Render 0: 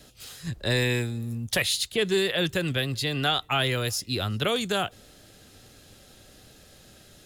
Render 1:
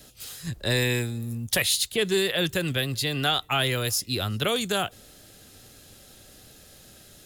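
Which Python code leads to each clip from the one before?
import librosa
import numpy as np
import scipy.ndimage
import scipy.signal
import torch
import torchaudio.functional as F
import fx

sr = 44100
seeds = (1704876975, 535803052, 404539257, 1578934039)

y = fx.high_shelf(x, sr, hz=8700.0, db=9.5)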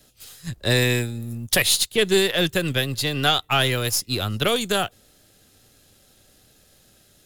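y = np.where(x < 0.0, 10.0 ** (-3.0 / 20.0) * x, x)
y = fx.upward_expand(y, sr, threshold_db=-45.0, expansion=1.5)
y = y * librosa.db_to_amplitude(7.0)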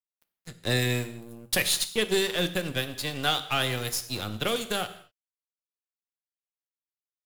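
y = np.sign(x) * np.maximum(np.abs(x) - 10.0 ** (-31.0 / 20.0), 0.0)
y = fx.rev_gated(y, sr, seeds[0], gate_ms=260, shape='falling', drr_db=9.5)
y = y * librosa.db_to_amplitude(-5.0)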